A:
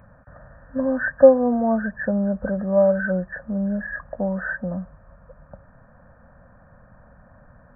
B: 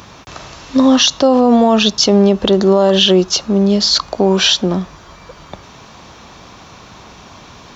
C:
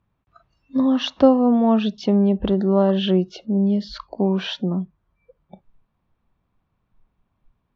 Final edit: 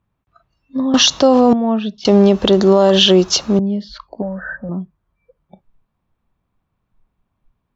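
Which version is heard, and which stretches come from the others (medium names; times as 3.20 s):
C
0.94–1.53 s: from B
2.05–3.59 s: from B
4.22–4.69 s: from A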